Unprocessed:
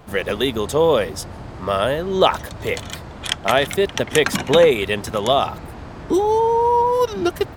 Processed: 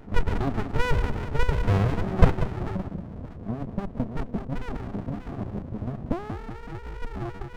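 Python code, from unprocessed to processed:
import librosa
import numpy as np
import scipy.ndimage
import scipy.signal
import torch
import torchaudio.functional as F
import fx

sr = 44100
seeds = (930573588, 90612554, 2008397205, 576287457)

p1 = x + 10.0 ** (-6.0 / 20.0) * np.pad(x, (int(594 * sr / 1000.0), 0))[:len(x)]
p2 = fx.rider(p1, sr, range_db=5, speed_s=0.5)
p3 = fx.peak_eq(p2, sr, hz=480.0, db=9.0, octaves=0.22)
p4 = fx.spec_gate(p3, sr, threshold_db=-15, keep='strong')
p5 = fx.high_shelf(p4, sr, hz=2200.0, db=3.5)
p6 = fx.level_steps(p5, sr, step_db=9)
p7 = p6 + fx.echo_feedback(p6, sr, ms=188, feedback_pct=53, wet_db=-10.0, dry=0)
p8 = fx.filter_sweep_lowpass(p7, sr, from_hz=1000.0, to_hz=240.0, start_s=2.09, end_s=2.8, q=2.2)
p9 = fx.running_max(p8, sr, window=65)
y = p9 * librosa.db_to_amplitude(-2.0)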